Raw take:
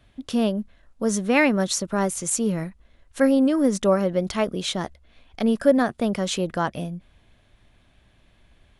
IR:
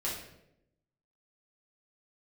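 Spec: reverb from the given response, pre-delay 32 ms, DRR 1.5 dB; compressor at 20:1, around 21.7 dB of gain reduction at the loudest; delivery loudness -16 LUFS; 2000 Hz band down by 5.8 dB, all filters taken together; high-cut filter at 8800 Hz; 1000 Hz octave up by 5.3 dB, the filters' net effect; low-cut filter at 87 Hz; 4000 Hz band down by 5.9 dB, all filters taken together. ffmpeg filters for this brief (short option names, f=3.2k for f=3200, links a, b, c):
-filter_complex "[0:a]highpass=87,lowpass=8.8k,equalizer=f=1k:t=o:g=9,equalizer=f=2k:t=o:g=-9,equalizer=f=4k:t=o:g=-5,acompressor=threshold=-31dB:ratio=20,asplit=2[a][b];[1:a]atrim=start_sample=2205,adelay=32[c];[b][c]afir=irnorm=-1:irlink=0,volume=-6dB[d];[a][d]amix=inputs=2:normalize=0,volume=18dB"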